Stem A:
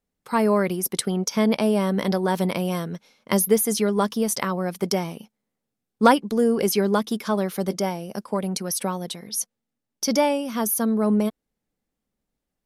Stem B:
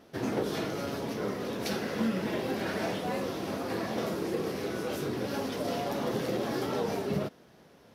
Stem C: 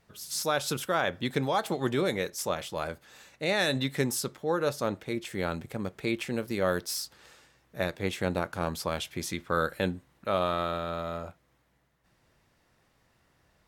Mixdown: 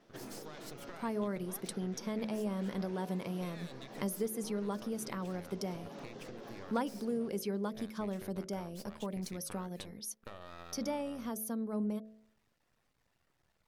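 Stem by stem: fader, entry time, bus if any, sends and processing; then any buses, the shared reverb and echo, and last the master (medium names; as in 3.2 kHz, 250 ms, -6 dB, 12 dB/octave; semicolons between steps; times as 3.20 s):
-13.5 dB, 0.70 s, no bus, no send, bass shelf 480 Hz +7 dB
-8.5 dB, 0.00 s, bus A, no send, elliptic band-pass 120–7000 Hz
-3.0 dB, 0.00 s, bus A, no send, reverb removal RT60 1 s; compression, threshold -30 dBFS, peak gain reduction 8 dB; half-wave rectifier
bus A: 0.0 dB, compression, threshold -42 dBFS, peak gain reduction 10.5 dB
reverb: none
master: de-hum 54.37 Hz, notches 12; compression 1.5:1, threshold -43 dBFS, peak gain reduction 8 dB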